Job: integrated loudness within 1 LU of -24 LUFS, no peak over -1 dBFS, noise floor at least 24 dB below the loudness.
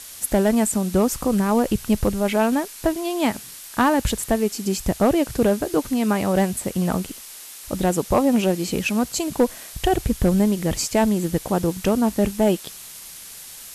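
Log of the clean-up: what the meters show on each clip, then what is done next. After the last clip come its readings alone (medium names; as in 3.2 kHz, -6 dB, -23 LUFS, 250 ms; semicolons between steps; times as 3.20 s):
clipped samples 0.6%; clipping level -9.0 dBFS; noise floor -40 dBFS; noise floor target -46 dBFS; loudness -21.5 LUFS; peak level -9.0 dBFS; loudness target -24.0 LUFS
-> clip repair -9 dBFS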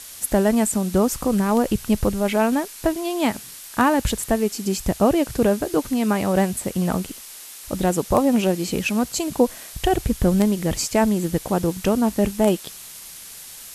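clipped samples 0.0%; noise floor -40 dBFS; noise floor target -46 dBFS
-> noise print and reduce 6 dB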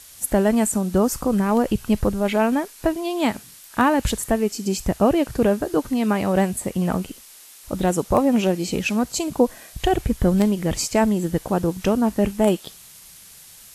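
noise floor -46 dBFS; loudness -21.5 LUFS; peak level -2.5 dBFS; loudness target -24.0 LUFS
-> trim -2.5 dB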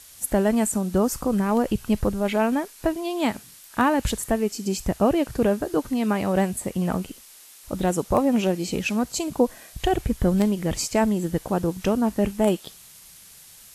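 loudness -24.0 LUFS; peak level -5.0 dBFS; noise floor -48 dBFS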